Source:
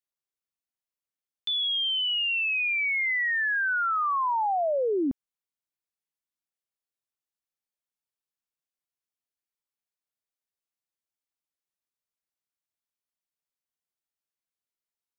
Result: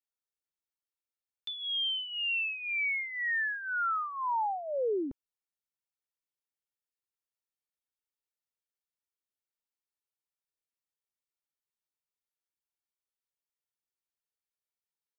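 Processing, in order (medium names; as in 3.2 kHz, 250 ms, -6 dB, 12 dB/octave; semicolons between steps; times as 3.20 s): comb 2.2 ms, depth 59%; trim -7.5 dB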